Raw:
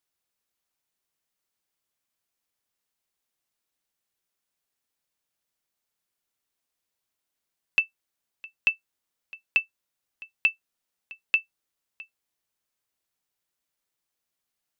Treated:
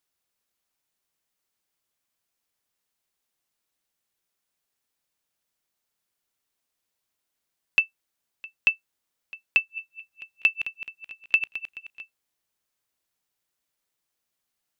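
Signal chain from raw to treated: 9.57–12.01 regenerating reverse delay 0.107 s, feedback 67%, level -10 dB; gain +2 dB

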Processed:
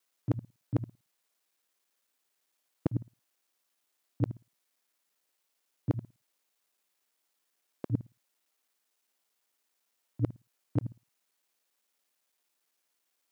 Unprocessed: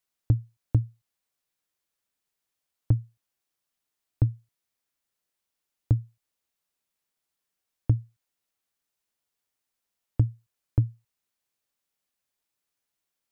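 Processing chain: local time reversal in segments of 56 ms; HPF 260 Hz 12 dB/oct; gain +5.5 dB

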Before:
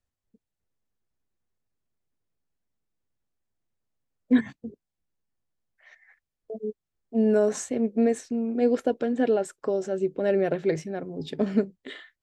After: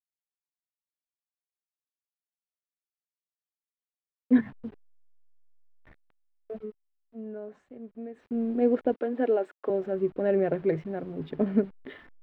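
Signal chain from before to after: level-crossing sampler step -44.5 dBFS; 6.52–8.39 dip -17 dB, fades 0.26 s; 8.94–9.7 HPF 270 Hz 24 dB/oct; companded quantiser 8-bit; air absorption 480 m

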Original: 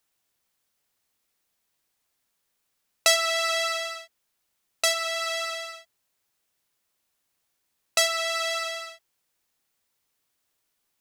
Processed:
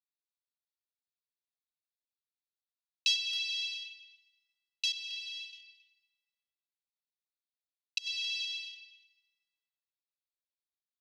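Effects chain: Wiener smoothing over 15 samples; 4.92–5.53 expander -27 dBFS; steep high-pass 2700 Hz 72 dB/oct; dynamic EQ 6100 Hz, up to +3 dB, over -39 dBFS, Q 2.2; 7.98–8.45 negative-ratio compressor -30 dBFS, ratio -0.5; air absorption 290 m; speakerphone echo 0.27 s, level -12 dB; plate-style reverb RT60 2.4 s, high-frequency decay 0.55×, pre-delay 0.105 s, DRR 17.5 dB; gain +3.5 dB

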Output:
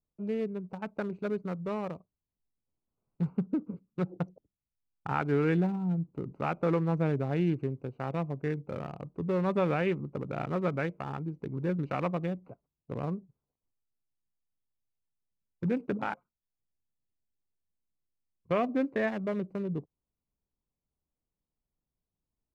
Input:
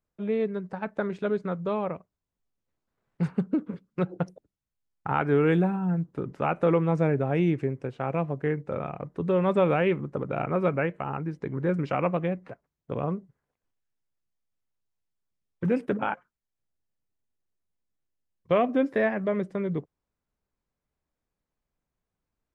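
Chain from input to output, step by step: Wiener smoothing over 25 samples; bell 550 Hz -3.5 dB 1.2 oct; notch 3200 Hz, Q 15; gain -3 dB

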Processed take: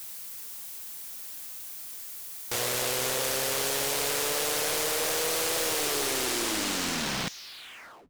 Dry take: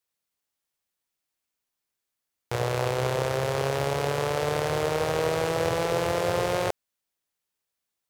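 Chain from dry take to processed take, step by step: tape stop at the end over 2.52 s; differentiator; power-law curve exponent 0.35

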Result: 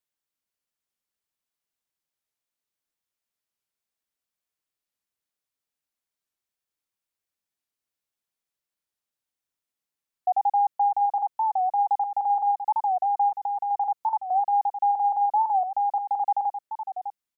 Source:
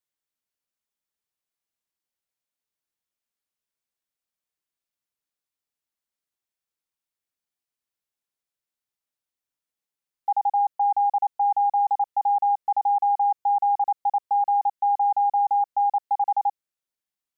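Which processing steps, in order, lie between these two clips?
13.29–13.71 dynamic EQ 700 Hz, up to -3 dB, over -29 dBFS, Q 1.5; echo 0.604 s -10 dB; record warp 45 rpm, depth 160 cents

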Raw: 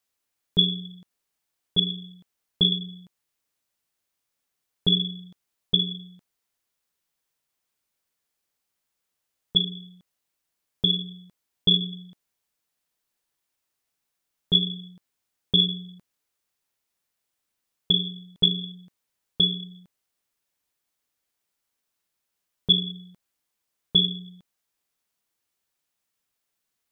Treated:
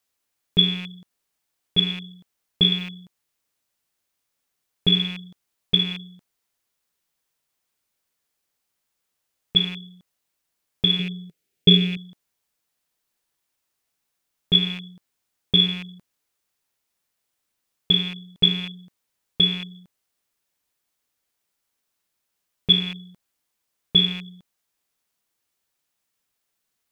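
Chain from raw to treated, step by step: rattling part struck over -38 dBFS, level -28 dBFS; 10.99–11.97 fifteen-band EQ 160 Hz +8 dB, 400 Hz +10 dB, 1000 Hz -11 dB, 2500 Hz +4 dB; gain +2.5 dB

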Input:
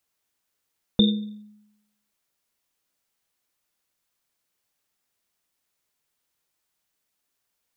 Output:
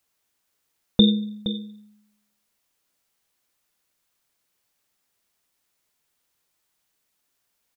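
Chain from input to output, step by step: echo 0.468 s -12 dB; gain +3.5 dB

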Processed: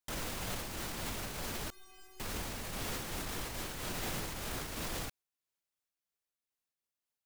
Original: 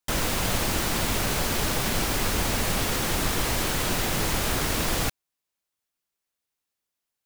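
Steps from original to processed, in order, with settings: limiter -22 dBFS, peak gain reduction 10.5 dB; 1.7–2.2 metallic resonator 370 Hz, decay 0.57 s, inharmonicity 0.008; noise-modulated level, depth 50%; gain -5.5 dB

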